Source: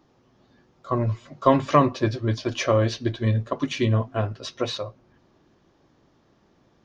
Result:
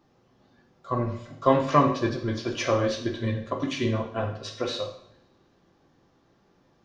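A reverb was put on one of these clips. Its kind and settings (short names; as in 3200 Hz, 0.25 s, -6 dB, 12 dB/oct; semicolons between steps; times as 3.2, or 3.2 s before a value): two-slope reverb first 0.6 s, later 1.8 s, from -24 dB, DRR 1 dB; gain -4 dB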